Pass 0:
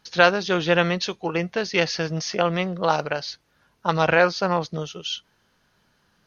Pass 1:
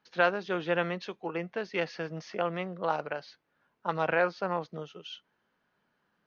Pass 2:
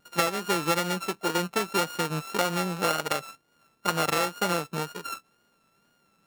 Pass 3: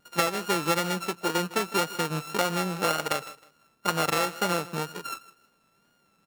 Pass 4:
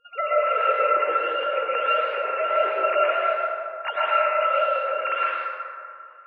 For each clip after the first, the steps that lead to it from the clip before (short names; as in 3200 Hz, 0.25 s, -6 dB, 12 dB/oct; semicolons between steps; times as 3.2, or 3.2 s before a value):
three-band isolator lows -14 dB, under 160 Hz, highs -15 dB, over 2900 Hz; gain -8.5 dB
sample sorter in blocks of 32 samples; compressor 10:1, threshold -29 dBFS, peak gain reduction 11 dB; wow and flutter 53 cents; gain +8.5 dB
feedback echo 0.157 s, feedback 27%, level -18.5 dB
sine-wave speech; flange 1.5 Hz, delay 6.1 ms, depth 9.5 ms, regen +89%; plate-style reverb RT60 2.4 s, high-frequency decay 0.4×, pre-delay 0.1 s, DRR -6.5 dB; gain +2 dB